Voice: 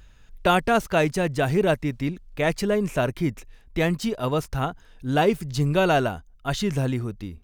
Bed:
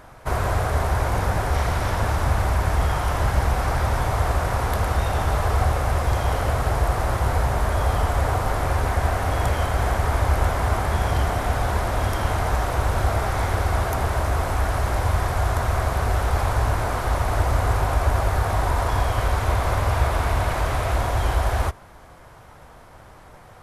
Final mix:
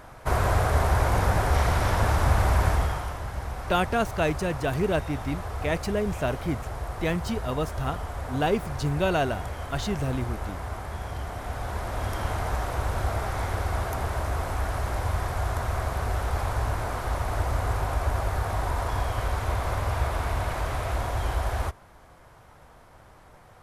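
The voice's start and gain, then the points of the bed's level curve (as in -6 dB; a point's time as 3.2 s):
3.25 s, -4.5 dB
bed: 2.67 s -0.5 dB
3.21 s -12.5 dB
11.2 s -12.5 dB
12.19 s -6 dB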